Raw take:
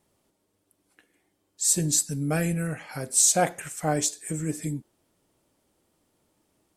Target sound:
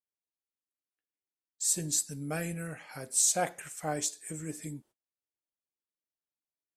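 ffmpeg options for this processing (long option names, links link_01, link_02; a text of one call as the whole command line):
ffmpeg -i in.wav -af "agate=range=-29dB:threshold=-48dB:ratio=16:detection=peak,lowshelf=frequency=370:gain=-5.5,volume=-6dB" out.wav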